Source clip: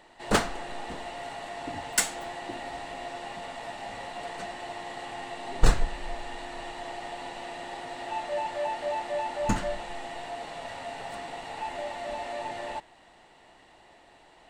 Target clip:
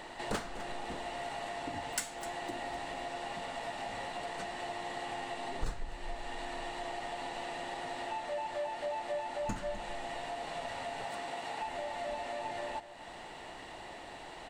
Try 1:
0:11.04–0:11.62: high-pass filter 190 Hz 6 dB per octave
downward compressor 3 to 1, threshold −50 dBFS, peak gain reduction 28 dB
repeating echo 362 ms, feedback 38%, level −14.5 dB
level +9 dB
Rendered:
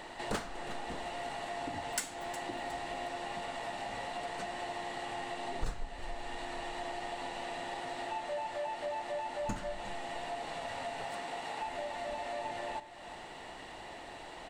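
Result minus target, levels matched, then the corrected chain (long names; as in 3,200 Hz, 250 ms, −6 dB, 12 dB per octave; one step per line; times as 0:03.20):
echo 108 ms late
0:11.04–0:11.62: high-pass filter 190 Hz 6 dB per octave
downward compressor 3 to 1, threshold −50 dBFS, peak gain reduction 28 dB
repeating echo 254 ms, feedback 38%, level −14.5 dB
level +9 dB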